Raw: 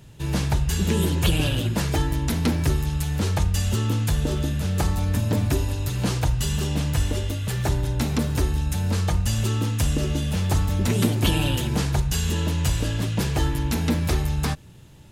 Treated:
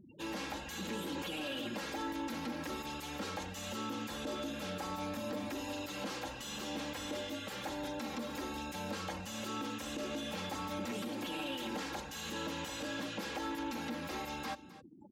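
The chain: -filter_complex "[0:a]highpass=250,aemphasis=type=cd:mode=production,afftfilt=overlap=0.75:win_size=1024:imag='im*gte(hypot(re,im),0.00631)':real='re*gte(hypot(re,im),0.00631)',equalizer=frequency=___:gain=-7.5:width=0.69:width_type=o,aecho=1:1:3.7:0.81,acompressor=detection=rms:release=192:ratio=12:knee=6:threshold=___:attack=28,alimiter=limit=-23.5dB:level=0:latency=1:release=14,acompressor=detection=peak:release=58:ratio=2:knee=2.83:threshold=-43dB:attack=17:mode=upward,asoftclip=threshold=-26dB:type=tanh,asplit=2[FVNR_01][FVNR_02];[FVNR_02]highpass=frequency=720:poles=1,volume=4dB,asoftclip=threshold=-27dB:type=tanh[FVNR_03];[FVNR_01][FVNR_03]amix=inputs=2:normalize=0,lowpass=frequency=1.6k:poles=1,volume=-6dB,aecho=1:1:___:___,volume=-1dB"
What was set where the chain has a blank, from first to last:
9.4k, -27dB, 260, 0.15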